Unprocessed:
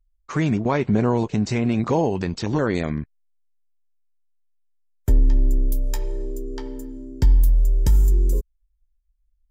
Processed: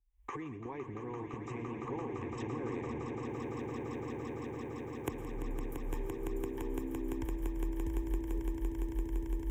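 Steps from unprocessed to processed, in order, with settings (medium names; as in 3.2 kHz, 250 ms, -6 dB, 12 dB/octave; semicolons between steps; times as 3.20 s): recorder AGC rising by 79 dB/s; high-pass 55 Hz 12 dB/octave; treble shelf 3.1 kHz -10.5 dB; compression 10:1, threshold -32 dBFS, peak gain reduction 30.5 dB; static phaser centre 920 Hz, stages 8; echo with a slow build-up 170 ms, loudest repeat 8, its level -7.5 dB; on a send at -16 dB: reverberation RT60 0.50 s, pre-delay 105 ms; on the sum: trim -3 dB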